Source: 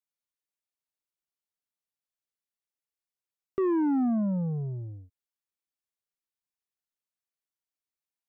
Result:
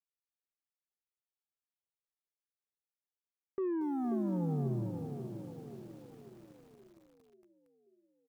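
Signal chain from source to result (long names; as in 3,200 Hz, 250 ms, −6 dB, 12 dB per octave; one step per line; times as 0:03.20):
noise gate −39 dBFS, range −7 dB
comb filter 2.4 ms, depth 51%
downward compressor, threshold −25 dBFS, peak gain reduction 4 dB
brickwall limiter −27.5 dBFS, peak gain reduction 7 dB
speech leveller 2 s
high-frequency loss of the air 260 metres
feedback echo with a band-pass in the loop 535 ms, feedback 59%, band-pass 420 Hz, level −5 dB
feedback echo at a low word length 231 ms, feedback 80%, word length 9 bits, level −14.5 dB
level −1 dB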